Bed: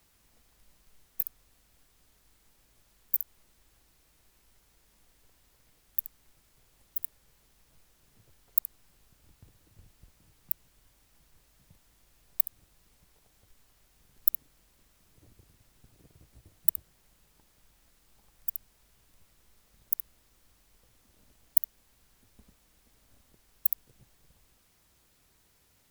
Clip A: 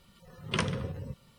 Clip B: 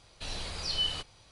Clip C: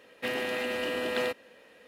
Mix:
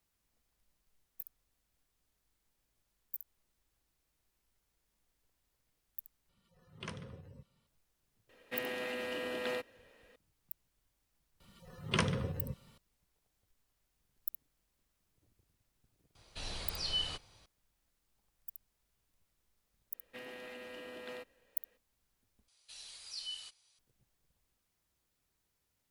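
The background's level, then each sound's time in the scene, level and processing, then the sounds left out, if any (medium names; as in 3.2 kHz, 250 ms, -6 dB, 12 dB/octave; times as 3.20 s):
bed -15 dB
6.29 s: replace with A -15 dB
8.29 s: add C -7.5 dB
11.40 s: add A -1.5 dB
16.15 s: add B -4.5 dB
19.91 s: add C -16.5 dB, fades 0.02 s
22.48 s: replace with B -5.5 dB + pre-emphasis filter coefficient 0.97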